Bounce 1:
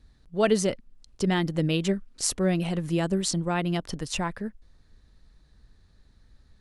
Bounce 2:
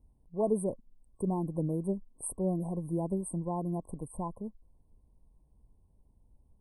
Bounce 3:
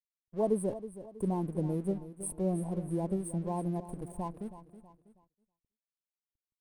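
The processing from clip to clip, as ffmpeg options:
-af "afftfilt=real='re*(1-between(b*sr/4096,1100,8200))':imag='im*(1-between(b*sr/4096,1100,8200))':win_size=4096:overlap=0.75,volume=0.473"
-af "aeval=exprs='sgn(val(0))*max(abs(val(0))-0.00178,0)':c=same,aecho=1:1:322|644|966|1288:0.211|0.0888|0.0373|0.0157,agate=range=0.0224:threshold=0.00112:ratio=3:detection=peak"

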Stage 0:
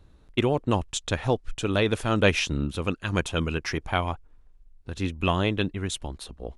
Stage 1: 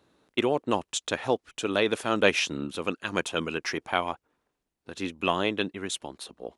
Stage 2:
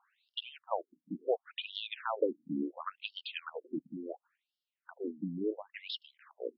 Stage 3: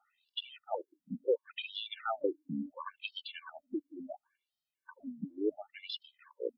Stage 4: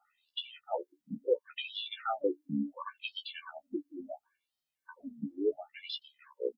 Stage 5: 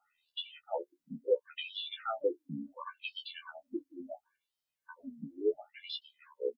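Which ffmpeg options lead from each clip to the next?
-af "highpass=260"
-filter_complex "[0:a]acrossover=split=1000|2800[s0][s1][s2];[s0]acompressor=threshold=0.0562:ratio=4[s3];[s1]acompressor=threshold=0.0141:ratio=4[s4];[s2]acompressor=threshold=0.00891:ratio=4[s5];[s3][s4][s5]amix=inputs=3:normalize=0,afftfilt=real='re*between(b*sr/1024,210*pow(4000/210,0.5+0.5*sin(2*PI*0.71*pts/sr))/1.41,210*pow(4000/210,0.5+0.5*sin(2*PI*0.71*pts/sr))*1.41)':imag='im*between(b*sr/1024,210*pow(4000/210,0.5+0.5*sin(2*PI*0.71*pts/sr))/1.41,210*pow(4000/210,0.5+0.5*sin(2*PI*0.71*pts/sr))*1.41)':win_size=1024:overlap=0.75,volume=1.12"
-af "afftfilt=real='re*gt(sin(2*PI*2*pts/sr)*(1-2*mod(floor(b*sr/1024/300),2)),0)':imag='im*gt(sin(2*PI*2*pts/sr)*(1-2*mod(floor(b*sr/1024/300),2)),0)':win_size=1024:overlap=0.75,volume=1.33"
-af "aecho=1:1:14|28:0.631|0.141"
-filter_complex "[0:a]asplit=2[s0][s1];[s1]adelay=12,volume=0.708[s2];[s0][s2]amix=inputs=2:normalize=0,volume=0.668"

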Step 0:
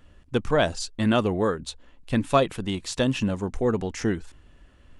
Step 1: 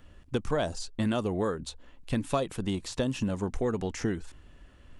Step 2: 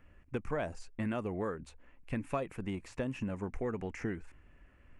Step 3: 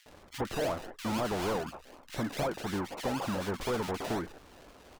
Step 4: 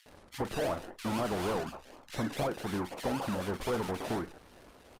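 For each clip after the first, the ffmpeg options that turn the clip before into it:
-filter_complex "[0:a]acrossover=split=1300|4700[s0][s1][s2];[s0]acompressor=threshold=0.0501:ratio=4[s3];[s1]acompressor=threshold=0.00631:ratio=4[s4];[s2]acompressor=threshold=0.00794:ratio=4[s5];[s3][s4][s5]amix=inputs=3:normalize=0"
-af "highshelf=f=2900:t=q:w=3:g=-7,volume=0.447"
-filter_complex "[0:a]acrusher=samples=32:mix=1:aa=0.000001:lfo=1:lforange=19.2:lforate=4,asplit=2[s0][s1];[s1]highpass=f=720:p=1,volume=15.8,asoftclip=type=tanh:threshold=0.0708[s2];[s0][s2]amix=inputs=2:normalize=0,lowpass=f=6500:p=1,volume=0.501,acrossover=split=1900[s3][s4];[s3]adelay=60[s5];[s5][s4]amix=inputs=2:normalize=0"
-filter_complex "[0:a]asplit=2[s0][s1];[s1]adelay=44,volume=0.2[s2];[s0][s2]amix=inputs=2:normalize=0,aresample=32000,aresample=44100" -ar 48000 -c:a libopus -b:a 32k

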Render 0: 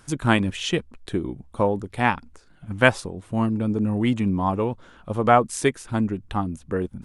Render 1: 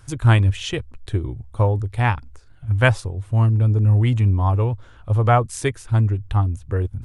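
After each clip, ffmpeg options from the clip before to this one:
-af "lowshelf=f=140:t=q:w=3:g=9,volume=0.891"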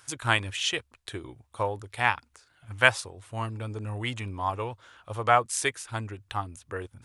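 -af "highpass=f=1400:p=1,volume=1.33"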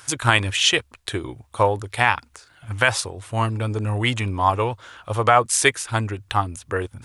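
-af "alimiter=level_in=3.76:limit=0.891:release=50:level=0:latency=1,volume=0.891"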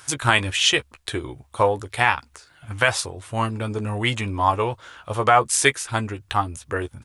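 -filter_complex "[0:a]asplit=2[s0][s1];[s1]adelay=14,volume=0.355[s2];[s0][s2]amix=inputs=2:normalize=0,volume=0.891"

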